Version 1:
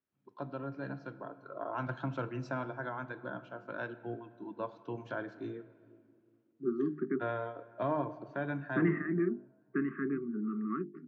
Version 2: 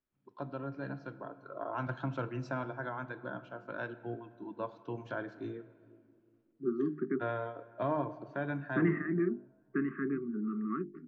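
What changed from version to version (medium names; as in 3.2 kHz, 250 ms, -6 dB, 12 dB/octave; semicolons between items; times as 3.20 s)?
master: remove high-pass 90 Hz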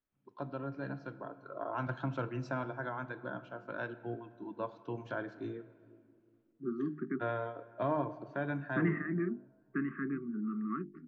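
second voice: add peaking EQ 450 Hz -9.5 dB 0.69 oct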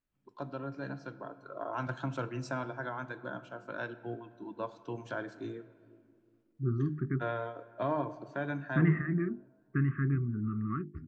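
second voice: remove steep high-pass 180 Hz 48 dB/octave; master: remove distance through air 170 m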